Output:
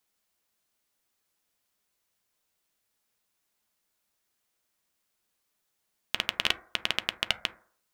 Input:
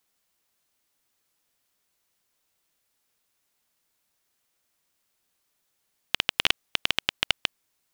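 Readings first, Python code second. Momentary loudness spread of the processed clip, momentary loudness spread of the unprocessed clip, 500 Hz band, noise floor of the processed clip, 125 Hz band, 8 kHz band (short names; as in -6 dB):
5 LU, 5 LU, -2.5 dB, -79 dBFS, -3.5 dB, -3.5 dB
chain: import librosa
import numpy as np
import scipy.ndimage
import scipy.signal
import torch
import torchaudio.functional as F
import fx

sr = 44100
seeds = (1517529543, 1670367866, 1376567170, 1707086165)

y = fx.rev_fdn(x, sr, rt60_s=0.53, lf_ratio=0.75, hf_ratio=0.25, size_ms=28.0, drr_db=9.0)
y = y * 10.0 ** (-3.5 / 20.0)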